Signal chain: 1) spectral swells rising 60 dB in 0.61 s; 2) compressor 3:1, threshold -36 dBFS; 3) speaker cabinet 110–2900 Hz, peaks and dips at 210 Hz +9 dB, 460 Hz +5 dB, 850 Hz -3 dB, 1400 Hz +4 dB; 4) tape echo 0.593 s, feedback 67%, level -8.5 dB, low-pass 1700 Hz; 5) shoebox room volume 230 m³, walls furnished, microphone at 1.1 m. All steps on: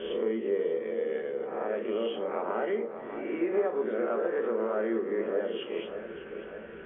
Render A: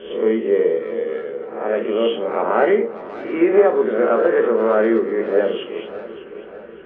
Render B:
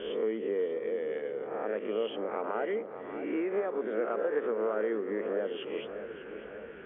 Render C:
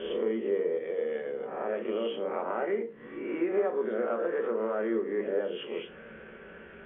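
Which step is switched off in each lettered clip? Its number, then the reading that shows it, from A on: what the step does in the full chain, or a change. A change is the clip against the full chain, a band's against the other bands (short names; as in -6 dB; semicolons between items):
2, mean gain reduction 8.5 dB; 5, echo-to-direct -4.0 dB to -23.5 dB; 4, momentary loudness spread change +4 LU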